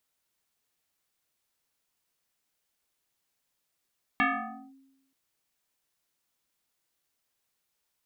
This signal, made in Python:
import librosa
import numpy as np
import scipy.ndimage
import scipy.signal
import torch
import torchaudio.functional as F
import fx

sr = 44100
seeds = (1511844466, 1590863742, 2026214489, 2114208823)

y = fx.fm2(sr, length_s=0.93, level_db=-19.5, carrier_hz=269.0, ratio=1.83, index=4.6, index_s=0.53, decay_s=0.98, shape='linear')